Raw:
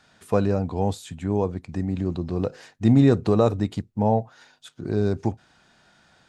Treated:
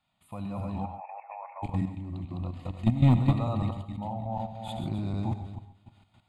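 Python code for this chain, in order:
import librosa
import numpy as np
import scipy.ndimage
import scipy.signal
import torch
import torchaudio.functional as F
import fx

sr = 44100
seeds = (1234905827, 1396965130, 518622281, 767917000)

y = fx.reverse_delay_fb(x, sr, ms=151, feedback_pct=48, wet_db=-0.5)
y = fx.brickwall_bandpass(y, sr, low_hz=510.0, high_hz=2700.0, at=(0.84, 1.62), fade=0.02)
y = fx.level_steps(y, sr, step_db=13)
y = fx.tremolo_shape(y, sr, shape='saw_up', hz=0.54, depth_pct=75)
y = np.clip(y, -10.0 ** (-13.5 / 20.0), 10.0 ** (-13.5 / 20.0))
y = fx.fixed_phaser(y, sr, hz=1600.0, stages=6)
y = fx.rev_gated(y, sr, seeds[0], gate_ms=160, shape='rising', drr_db=11.0)
y = fx.pre_swell(y, sr, db_per_s=28.0, at=(3.9, 5.08))
y = y * librosa.db_to_amplitude(2.0)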